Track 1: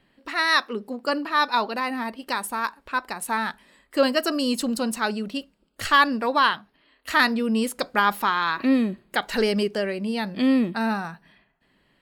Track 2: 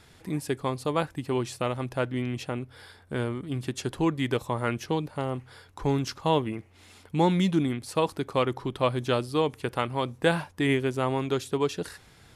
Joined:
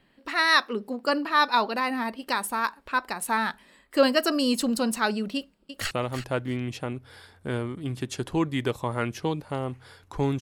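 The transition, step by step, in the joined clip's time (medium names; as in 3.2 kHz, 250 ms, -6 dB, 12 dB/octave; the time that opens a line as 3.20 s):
track 1
5.36–5.91 s: echo throw 330 ms, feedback 15%, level -10 dB
5.91 s: go over to track 2 from 1.57 s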